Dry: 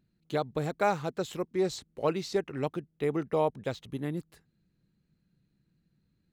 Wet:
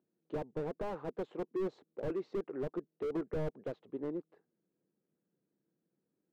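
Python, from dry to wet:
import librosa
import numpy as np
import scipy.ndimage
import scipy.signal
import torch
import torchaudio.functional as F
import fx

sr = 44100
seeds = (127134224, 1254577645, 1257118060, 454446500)

y = fx.ladder_bandpass(x, sr, hz=520.0, resonance_pct=30)
y = fx.slew_limit(y, sr, full_power_hz=3.0)
y = F.gain(torch.from_numpy(y), 10.0).numpy()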